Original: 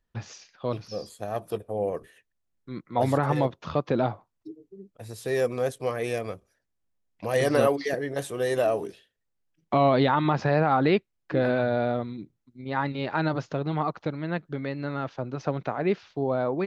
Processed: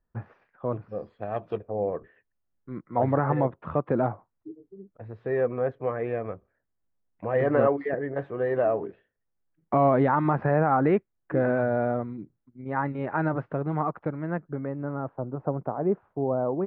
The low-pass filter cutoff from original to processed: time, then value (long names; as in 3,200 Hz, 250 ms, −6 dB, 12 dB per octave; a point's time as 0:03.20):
low-pass filter 24 dB per octave
0:00.85 1,600 Hz
0:01.49 3,100 Hz
0:01.70 1,800 Hz
0:14.13 1,800 Hz
0:15.18 1,100 Hz